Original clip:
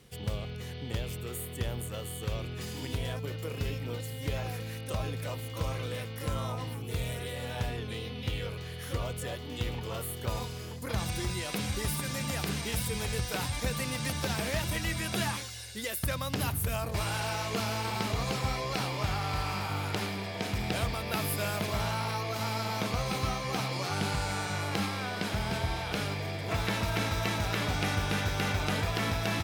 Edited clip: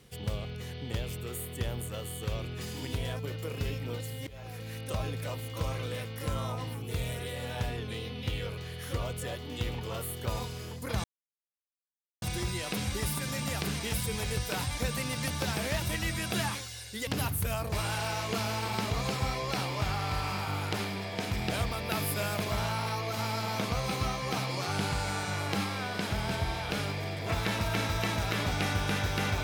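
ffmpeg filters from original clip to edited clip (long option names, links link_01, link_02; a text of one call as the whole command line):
ffmpeg -i in.wav -filter_complex "[0:a]asplit=4[link_01][link_02][link_03][link_04];[link_01]atrim=end=4.27,asetpts=PTS-STARTPTS,afade=type=out:start_time=4.266:duration=0.004:curve=hsin:silence=0.0794328[link_05];[link_02]atrim=start=4.27:end=11.04,asetpts=PTS-STARTPTS,afade=type=in:duration=0.53:silence=0.0794328,afade=type=out:start_time=6.766:duration=0.004:curve=hsin,apad=pad_dur=1.18[link_06];[link_03]atrim=start=11.04:end=15.892,asetpts=PTS-STARTPTS,afade=type=in:duration=0.004:curve=hsin[link_07];[link_04]atrim=start=16.288[link_08];[link_05][link_06][link_07]concat=n=3:v=0:a=1[link_09];[link_09][link_08]acrossfade=duration=0.004:curve1=hsin:curve2=hsin" out.wav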